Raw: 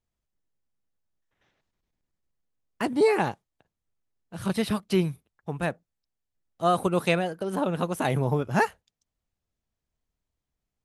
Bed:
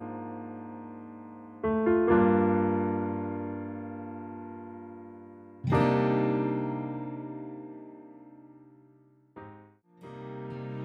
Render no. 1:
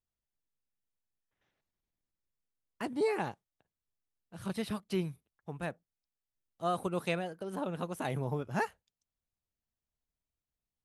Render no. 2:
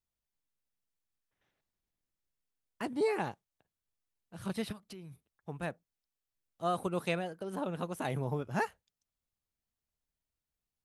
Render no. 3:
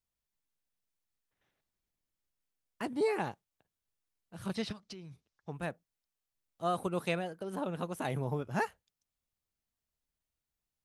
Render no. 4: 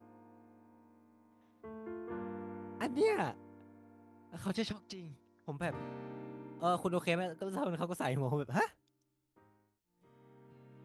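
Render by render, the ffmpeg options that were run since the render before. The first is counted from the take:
-af "volume=0.335"
-filter_complex "[0:a]asplit=3[s0][s1][s2];[s0]afade=t=out:st=4.71:d=0.02[s3];[s1]acompressor=threshold=0.00562:ratio=8:attack=3.2:release=140:knee=1:detection=peak,afade=t=in:st=4.71:d=0.02,afade=t=out:st=5.11:d=0.02[s4];[s2]afade=t=in:st=5.11:d=0.02[s5];[s3][s4][s5]amix=inputs=3:normalize=0"
-filter_complex "[0:a]asettb=1/sr,asplit=3[s0][s1][s2];[s0]atrim=end=4.554[s3];[s1]atrim=start=4.55:end=5.53,asetpts=PTS-STARTPTS,afade=t=in:d=0.004:c=qsin,afade=t=out:st=0.976:d=0.004:c=qsin,lowpass=f=5700:t=q:w=2[s4];[s2]atrim=start=5.526[s5];[s3][s4]acrossfade=d=0.004:c1=hsin:c2=qsin[s6];[s6][s5]acrossfade=d=0.004:c1=qsin:c2=hsin"
-filter_complex "[1:a]volume=0.0944[s0];[0:a][s0]amix=inputs=2:normalize=0"

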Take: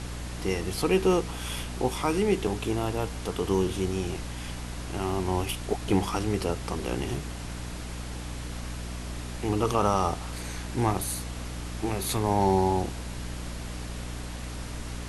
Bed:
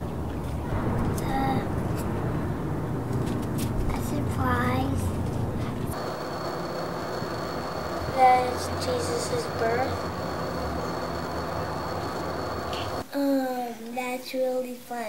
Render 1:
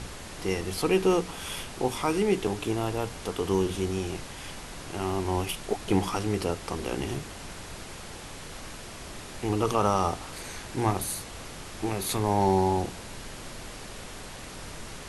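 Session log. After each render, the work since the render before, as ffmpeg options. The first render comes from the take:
-af "bandreject=f=60:t=h:w=4,bandreject=f=120:t=h:w=4,bandreject=f=180:t=h:w=4,bandreject=f=240:t=h:w=4,bandreject=f=300:t=h:w=4"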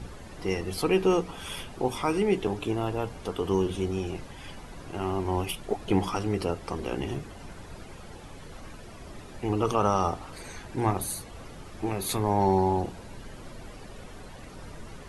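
-af "afftdn=nr=11:nf=-42"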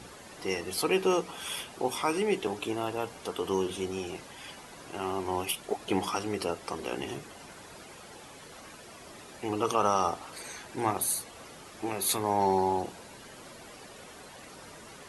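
-af "highpass=f=400:p=1,highshelf=f=5000:g=5.5"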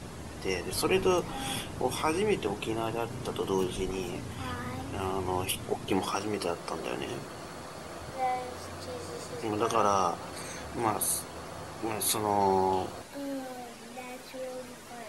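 -filter_complex "[1:a]volume=0.237[s0];[0:a][s0]amix=inputs=2:normalize=0"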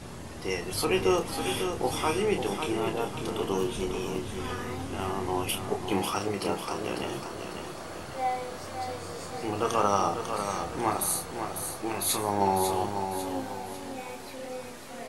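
-filter_complex "[0:a]asplit=2[s0][s1];[s1]adelay=30,volume=0.473[s2];[s0][s2]amix=inputs=2:normalize=0,aecho=1:1:548|1096|1644|2192|2740:0.447|0.183|0.0751|0.0308|0.0126"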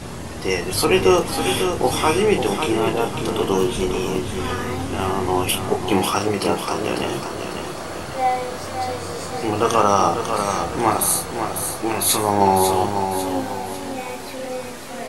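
-af "volume=2.99,alimiter=limit=0.708:level=0:latency=1"

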